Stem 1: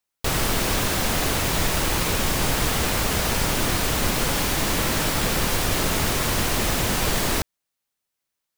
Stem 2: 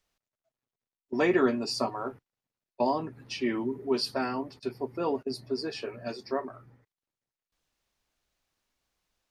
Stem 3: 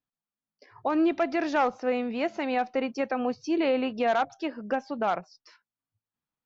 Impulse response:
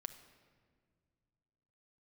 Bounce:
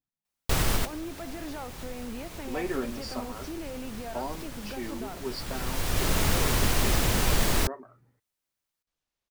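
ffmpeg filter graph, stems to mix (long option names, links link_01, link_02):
-filter_complex "[0:a]lowshelf=frequency=95:gain=7.5,adelay=250,volume=-4dB[link_01];[1:a]adelay=1350,volume=-8dB[link_02];[2:a]lowshelf=frequency=260:gain=8,alimiter=level_in=2dB:limit=-24dB:level=0:latency=1,volume=-2dB,volume=-6.5dB,asplit=2[link_03][link_04];[link_04]apad=whole_len=389213[link_05];[link_01][link_05]sidechaincompress=threshold=-55dB:ratio=8:attack=23:release=795[link_06];[link_06][link_02][link_03]amix=inputs=3:normalize=0"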